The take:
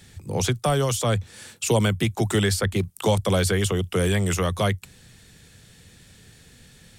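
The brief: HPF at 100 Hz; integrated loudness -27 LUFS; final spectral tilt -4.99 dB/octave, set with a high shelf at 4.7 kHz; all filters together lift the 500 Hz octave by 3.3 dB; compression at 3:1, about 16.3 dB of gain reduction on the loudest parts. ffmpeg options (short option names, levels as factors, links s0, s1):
-af "highpass=100,equalizer=f=500:t=o:g=4,highshelf=f=4700:g=-6.5,acompressor=threshold=0.0126:ratio=3,volume=3.35"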